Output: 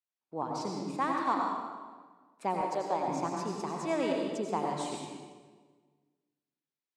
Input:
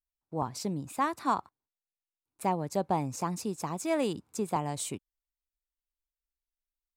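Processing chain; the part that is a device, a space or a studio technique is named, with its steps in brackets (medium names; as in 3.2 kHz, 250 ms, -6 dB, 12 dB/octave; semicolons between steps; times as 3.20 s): supermarket ceiling speaker (band-pass 240–5300 Hz; reverberation RT60 1.4 s, pre-delay 80 ms, DRR -0.5 dB); 2.61–3.08 s: tone controls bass -13 dB, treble +1 dB; trim -2.5 dB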